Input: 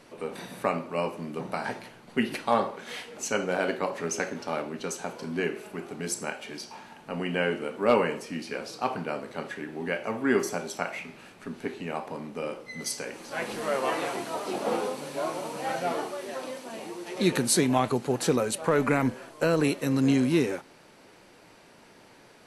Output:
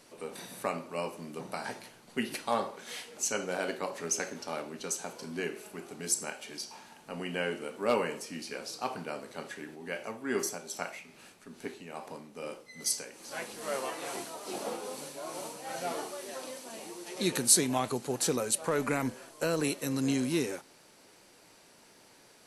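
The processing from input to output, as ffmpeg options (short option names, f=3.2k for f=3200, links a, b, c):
-filter_complex "[0:a]asplit=3[a][b][c];[a]afade=t=out:st=9.74:d=0.02[d];[b]tremolo=f=2.4:d=0.47,afade=t=in:st=9.74:d=0.02,afade=t=out:st=15.87:d=0.02[e];[c]afade=t=in:st=15.87:d=0.02[f];[d][e][f]amix=inputs=3:normalize=0,bass=f=250:g=-2,treble=f=4k:g=10,volume=-6dB"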